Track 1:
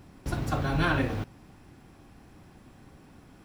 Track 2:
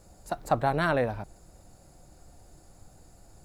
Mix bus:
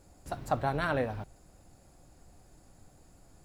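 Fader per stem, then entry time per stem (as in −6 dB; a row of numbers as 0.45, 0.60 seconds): −13.5, −5.0 decibels; 0.00, 0.00 seconds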